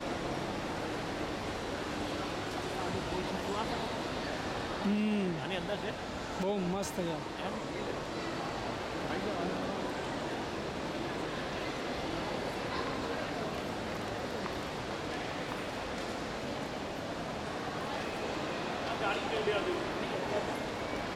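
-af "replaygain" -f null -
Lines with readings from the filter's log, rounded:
track_gain = +17.5 dB
track_peak = 0.069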